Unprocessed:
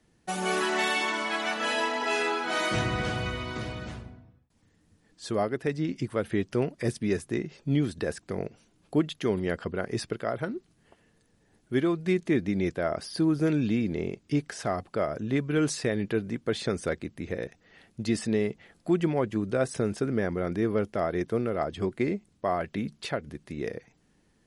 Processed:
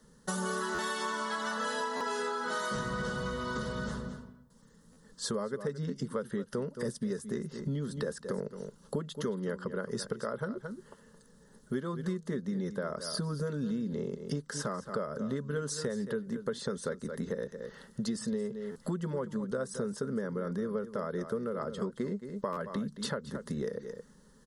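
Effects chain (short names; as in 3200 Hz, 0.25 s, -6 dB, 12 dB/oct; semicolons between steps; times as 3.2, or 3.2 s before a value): fixed phaser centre 480 Hz, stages 8; echo 0.22 s -14 dB; compressor 6:1, threshold -41 dBFS, peak gain reduction 17 dB; stuck buffer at 0.74/1.96/4.92/18.71/22.52, samples 512, times 3; gain +9 dB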